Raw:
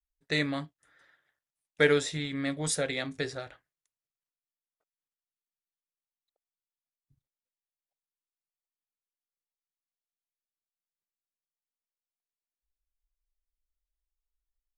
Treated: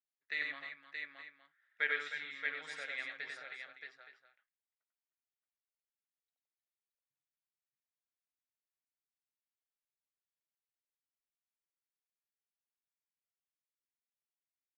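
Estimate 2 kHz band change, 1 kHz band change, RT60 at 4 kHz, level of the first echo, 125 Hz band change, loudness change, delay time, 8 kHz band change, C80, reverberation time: −3.5 dB, −9.5 dB, no reverb audible, −3.5 dB, below −35 dB, −10.0 dB, 93 ms, −25.5 dB, no reverb audible, no reverb audible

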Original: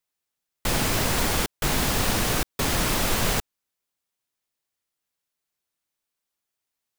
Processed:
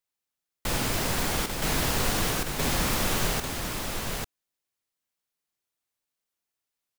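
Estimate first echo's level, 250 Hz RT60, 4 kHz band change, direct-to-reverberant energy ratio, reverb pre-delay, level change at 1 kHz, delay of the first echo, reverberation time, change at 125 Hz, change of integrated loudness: −8.0 dB, no reverb audible, −2.5 dB, no reverb audible, no reverb audible, −2.5 dB, 49 ms, no reverb audible, −2.5 dB, −3.5 dB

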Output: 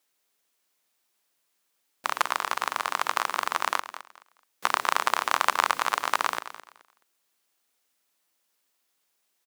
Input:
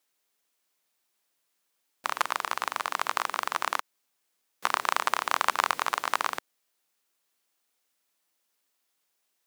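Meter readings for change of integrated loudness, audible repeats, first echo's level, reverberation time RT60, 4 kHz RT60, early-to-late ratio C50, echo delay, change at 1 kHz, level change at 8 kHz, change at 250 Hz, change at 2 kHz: +2.0 dB, 2, −13.5 dB, no reverb audible, no reverb audible, no reverb audible, 213 ms, +2.0 dB, +2.0 dB, +2.5 dB, +2.0 dB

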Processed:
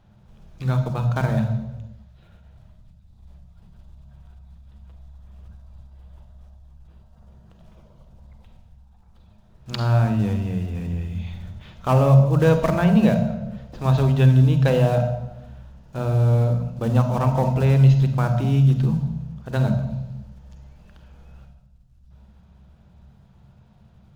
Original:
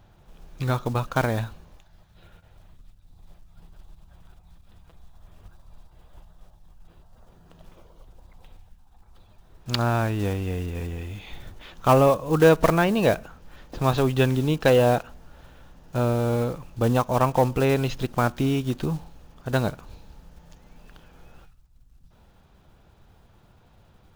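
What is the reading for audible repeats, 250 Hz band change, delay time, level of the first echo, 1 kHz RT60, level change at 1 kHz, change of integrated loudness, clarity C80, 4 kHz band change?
no echo audible, +3.5 dB, no echo audible, no echo audible, 0.95 s, −2.5 dB, +3.0 dB, 9.5 dB, −4.0 dB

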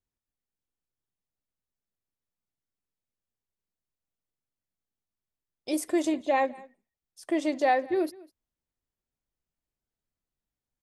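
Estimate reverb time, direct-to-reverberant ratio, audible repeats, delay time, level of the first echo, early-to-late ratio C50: no reverb audible, no reverb audible, 1, 201 ms, −22.5 dB, no reverb audible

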